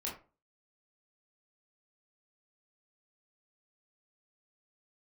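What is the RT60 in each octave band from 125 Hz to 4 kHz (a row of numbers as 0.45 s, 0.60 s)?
0.35 s, 0.40 s, 0.35 s, 0.35 s, 0.25 s, 0.20 s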